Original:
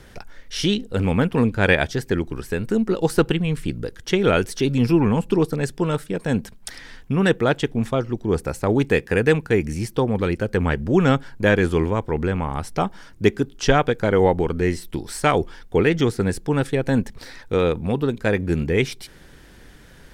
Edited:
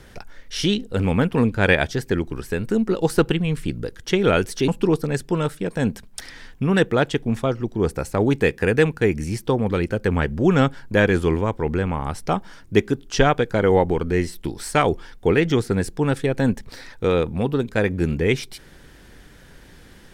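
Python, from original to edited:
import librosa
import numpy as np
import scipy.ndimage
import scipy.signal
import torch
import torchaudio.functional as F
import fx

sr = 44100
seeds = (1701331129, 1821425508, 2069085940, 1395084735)

y = fx.edit(x, sr, fx.cut(start_s=4.68, length_s=0.49), tone=tone)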